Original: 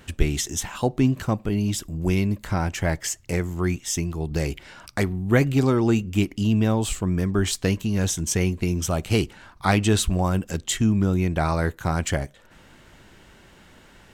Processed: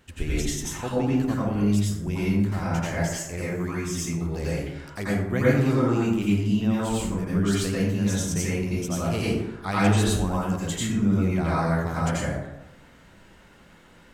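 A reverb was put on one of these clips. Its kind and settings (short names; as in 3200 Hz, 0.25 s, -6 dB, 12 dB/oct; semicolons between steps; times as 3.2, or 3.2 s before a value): plate-style reverb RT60 0.92 s, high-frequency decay 0.45×, pre-delay 75 ms, DRR -8 dB; gain -10 dB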